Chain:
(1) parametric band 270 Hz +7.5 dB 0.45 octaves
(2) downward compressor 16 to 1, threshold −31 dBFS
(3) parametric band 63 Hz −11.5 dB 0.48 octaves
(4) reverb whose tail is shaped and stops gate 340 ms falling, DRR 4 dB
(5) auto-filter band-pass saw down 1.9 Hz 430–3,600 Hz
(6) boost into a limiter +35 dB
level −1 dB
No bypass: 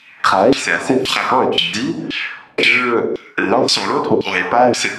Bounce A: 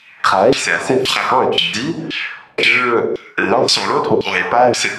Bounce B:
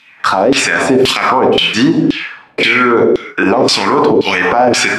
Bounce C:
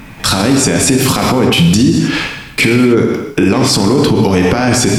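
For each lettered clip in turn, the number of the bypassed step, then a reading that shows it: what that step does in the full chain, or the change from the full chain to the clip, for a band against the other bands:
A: 1, 250 Hz band −3.0 dB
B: 2, average gain reduction 10.0 dB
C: 5, 125 Hz band +15.0 dB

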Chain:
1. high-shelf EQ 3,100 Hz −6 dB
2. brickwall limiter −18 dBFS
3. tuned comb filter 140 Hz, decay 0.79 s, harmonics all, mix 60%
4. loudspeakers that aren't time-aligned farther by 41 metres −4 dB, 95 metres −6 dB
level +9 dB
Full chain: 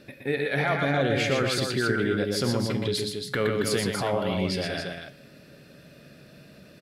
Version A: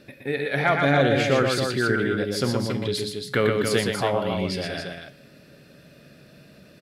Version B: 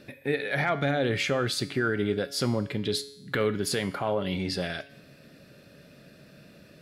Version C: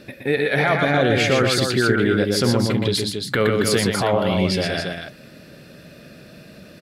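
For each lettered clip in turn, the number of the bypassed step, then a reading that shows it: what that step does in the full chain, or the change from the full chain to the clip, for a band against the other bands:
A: 2, change in momentary loudness spread +3 LU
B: 4, echo-to-direct ratio −2.0 dB to none audible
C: 3, change in integrated loudness +7.0 LU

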